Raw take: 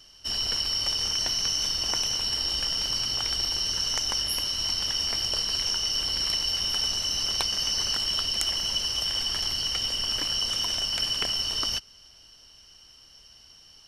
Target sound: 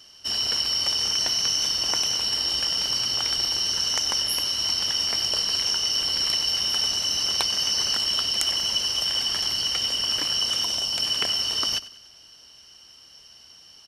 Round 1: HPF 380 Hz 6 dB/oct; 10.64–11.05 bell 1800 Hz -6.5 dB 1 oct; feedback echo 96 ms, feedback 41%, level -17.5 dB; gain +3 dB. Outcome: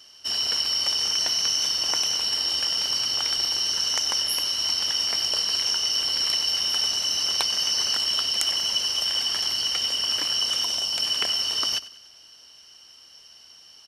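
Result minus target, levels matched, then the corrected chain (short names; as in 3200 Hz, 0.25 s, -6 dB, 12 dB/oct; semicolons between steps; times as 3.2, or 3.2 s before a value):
125 Hz band -6.5 dB
HPF 150 Hz 6 dB/oct; 10.64–11.05 bell 1800 Hz -6.5 dB 1 oct; feedback echo 96 ms, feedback 41%, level -17.5 dB; gain +3 dB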